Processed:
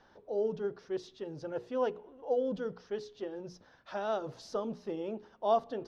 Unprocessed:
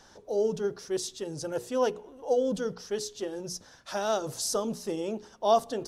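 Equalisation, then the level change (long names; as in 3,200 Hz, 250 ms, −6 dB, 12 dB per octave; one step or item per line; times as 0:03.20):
high-frequency loss of the air 290 metres
low-shelf EQ 160 Hz −5 dB
−3.5 dB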